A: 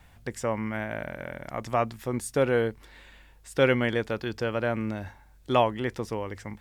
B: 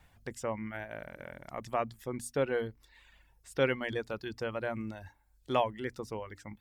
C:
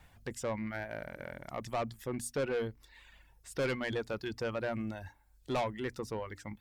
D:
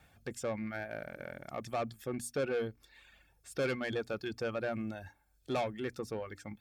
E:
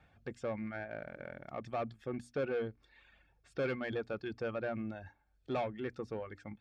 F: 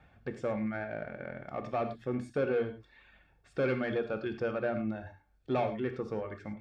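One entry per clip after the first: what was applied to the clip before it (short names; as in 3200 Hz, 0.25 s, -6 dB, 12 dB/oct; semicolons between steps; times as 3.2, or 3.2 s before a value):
notches 60/120/180/240/300 Hz; reverb removal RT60 0.81 s; gain -6 dB
soft clip -30.5 dBFS, distortion -8 dB; gain +2.5 dB
notch comb 970 Hz
Bessel low-pass 2700 Hz, order 2; gain -1.5 dB
high shelf 3500 Hz -7 dB; non-linear reverb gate 0.13 s flat, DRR 7 dB; gain +4.5 dB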